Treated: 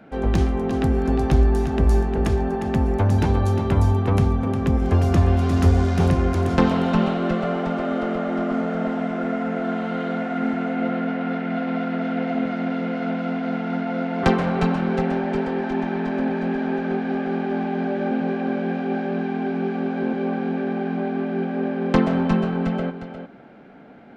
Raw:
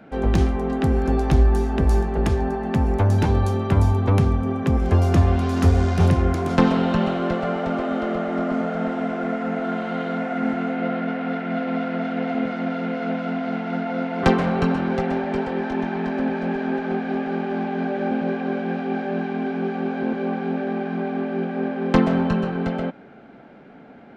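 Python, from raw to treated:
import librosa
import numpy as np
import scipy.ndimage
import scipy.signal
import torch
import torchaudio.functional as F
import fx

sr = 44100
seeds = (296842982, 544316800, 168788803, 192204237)

y = x + 10.0 ** (-9.0 / 20.0) * np.pad(x, (int(355 * sr / 1000.0), 0))[:len(x)]
y = y * librosa.db_to_amplitude(-1.0)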